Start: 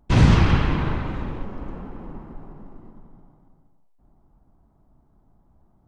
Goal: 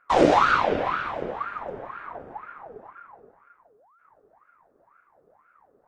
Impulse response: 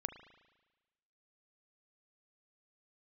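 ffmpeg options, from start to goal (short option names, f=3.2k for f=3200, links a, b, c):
-af "bandreject=f=3.7k:w=6.5,bandreject=f=55.09:t=h:w=4,bandreject=f=110.18:t=h:w=4,bandreject=f=165.27:t=h:w=4,bandreject=f=220.36:t=h:w=4,bandreject=f=275.45:t=h:w=4,bandreject=f=330.54:t=h:w=4,bandreject=f=385.63:t=h:w=4,bandreject=f=440.72:t=h:w=4,bandreject=f=495.81:t=h:w=4,bandreject=f=550.9:t=h:w=4,bandreject=f=605.99:t=h:w=4,bandreject=f=661.08:t=h:w=4,bandreject=f=716.17:t=h:w=4,bandreject=f=771.26:t=h:w=4,bandreject=f=826.35:t=h:w=4,bandreject=f=881.44:t=h:w=4,bandreject=f=936.53:t=h:w=4,bandreject=f=991.62:t=h:w=4,bandreject=f=1.04671k:t=h:w=4,bandreject=f=1.1018k:t=h:w=4,bandreject=f=1.15689k:t=h:w=4,bandreject=f=1.21198k:t=h:w=4,bandreject=f=1.26707k:t=h:w=4,bandreject=f=1.32216k:t=h:w=4,bandreject=f=1.37725k:t=h:w=4,bandreject=f=1.43234k:t=h:w=4,bandreject=f=1.48743k:t=h:w=4,bandreject=f=1.54252k:t=h:w=4,bandreject=f=1.59761k:t=h:w=4,bandreject=f=1.6527k:t=h:w=4,bandreject=f=1.70779k:t=h:w=4,bandreject=f=1.76288k:t=h:w=4,bandreject=f=1.81797k:t=h:w=4,bandreject=f=1.87306k:t=h:w=4,bandreject=f=1.92815k:t=h:w=4,bandreject=f=1.98324k:t=h:w=4,aeval=exprs='val(0)*sin(2*PI*910*n/s+910*0.55/2*sin(2*PI*2*n/s))':c=same"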